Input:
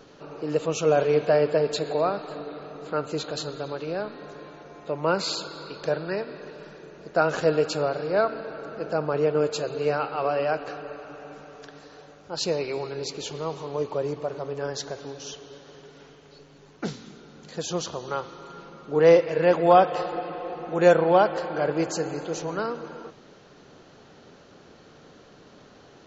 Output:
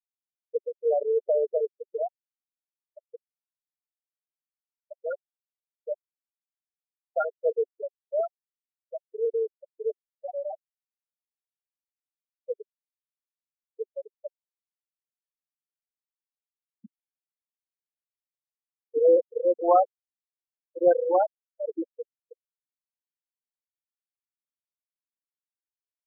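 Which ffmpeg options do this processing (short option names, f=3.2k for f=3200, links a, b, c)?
-af "afftfilt=real='re*gte(hypot(re,im),0.562)':imag='im*gte(hypot(re,im),0.562)':win_size=1024:overlap=0.75,afftdn=nr=17:nf=-35,volume=-2.5dB"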